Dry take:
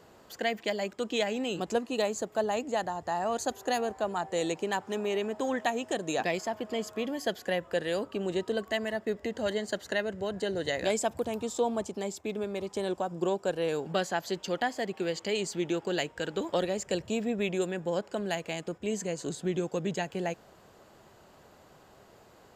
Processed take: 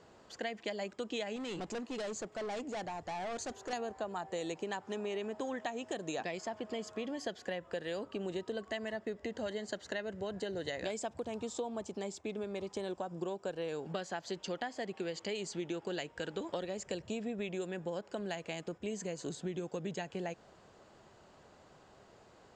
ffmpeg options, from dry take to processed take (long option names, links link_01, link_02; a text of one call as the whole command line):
ffmpeg -i in.wav -filter_complex "[0:a]asettb=1/sr,asplit=3[link_01][link_02][link_03];[link_01]atrim=end=1.364[link_04];[link_02]atrim=start=1.36:end=3.73,asetpts=PTS-STARTPTS,afade=type=in:duration=0.004:curve=qsin,afade=type=out:start_time=2.366:duration=0.004:curve=qsin,asoftclip=type=hard:threshold=-33dB[link_05];[link_03]atrim=start=3.726[link_06];[link_04][link_05]acrossfade=duration=0.004:curve1=hsin:curve2=qsin[link_07];[link_07][link_06]acrossfade=duration=0.004:curve1=qsin:curve2=hsin,lowpass=frequency=7900:width=0.5412,lowpass=frequency=7900:width=1.3066,acompressor=threshold=-31dB:ratio=6,volume=-3.5dB" out.wav